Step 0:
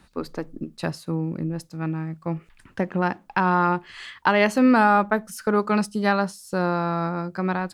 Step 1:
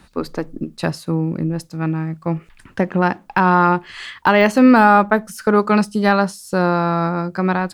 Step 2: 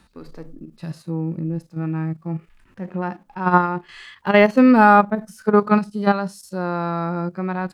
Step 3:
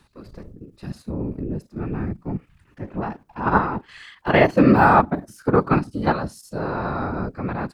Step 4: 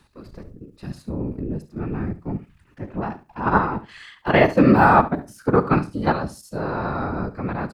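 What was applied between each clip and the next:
de-esser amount 70%; trim +6.5 dB
level held to a coarse grid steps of 13 dB; harmonic-percussive split percussive -16 dB; trim +2.5 dB
whisper effect; trim -2 dB
feedback delay 70 ms, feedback 17%, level -15.5 dB

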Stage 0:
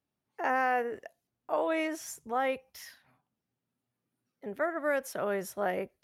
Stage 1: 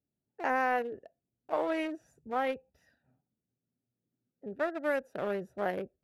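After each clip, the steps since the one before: local Wiener filter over 41 samples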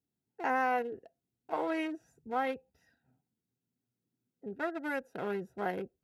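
comb of notches 590 Hz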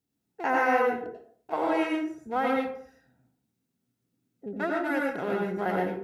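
plate-style reverb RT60 0.54 s, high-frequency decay 0.6×, pre-delay 80 ms, DRR -1 dB; trim +4 dB

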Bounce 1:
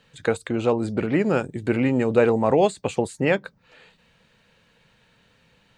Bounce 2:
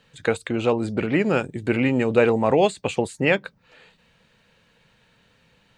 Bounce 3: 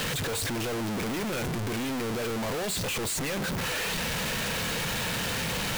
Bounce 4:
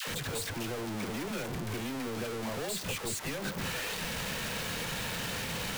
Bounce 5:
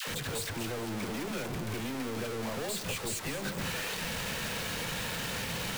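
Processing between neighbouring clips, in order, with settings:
dynamic bell 2.7 kHz, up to +6 dB, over -43 dBFS, Q 1.3
one-bit comparator; trim -6.5 dB
phase dispersion lows, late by 76 ms, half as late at 650 Hz; trim -5.5 dB
two-band feedback delay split 500 Hz, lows 104 ms, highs 224 ms, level -12.5 dB

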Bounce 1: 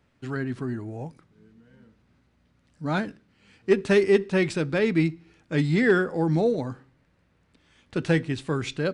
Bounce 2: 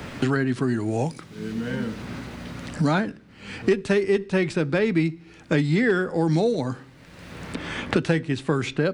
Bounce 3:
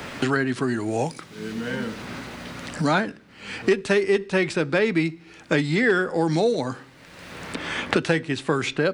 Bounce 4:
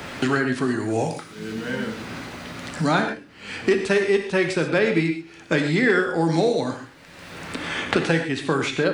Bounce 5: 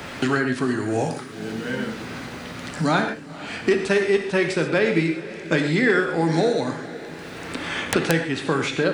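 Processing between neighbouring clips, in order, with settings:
three bands compressed up and down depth 100%; trim +1.5 dB
bass shelf 270 Hz -10 dB; trim +4 dB
gated-style reverb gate 160 ms flat, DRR 5 dB
echo that smears into a reverb 492 ms, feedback 60%, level -16 dB; integer overflow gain 6 dB

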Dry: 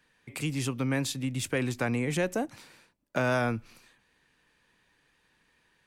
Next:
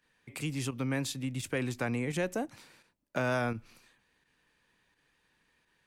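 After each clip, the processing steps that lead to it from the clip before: volume shaper 85 bpm, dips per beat 1, -9 dB, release 66 ms; trim -3.5 dB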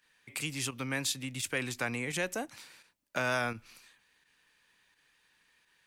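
tilt shelf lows -6 dB, about 910 Hz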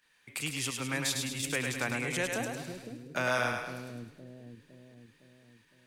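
two-band feedback delay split 430 Hz, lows 510 ms, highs 104 ms, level -4 dB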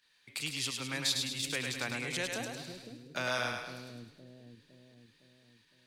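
peaking EQ 4.2 kHz +10.5 dB 0.85 oct; trim -5 dB

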